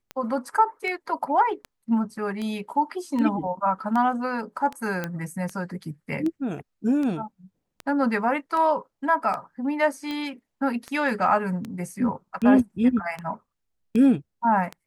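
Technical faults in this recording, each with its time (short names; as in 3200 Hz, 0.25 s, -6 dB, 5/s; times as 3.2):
tick 78 rpm -19 dBFS
5.04 pop -14 dBFS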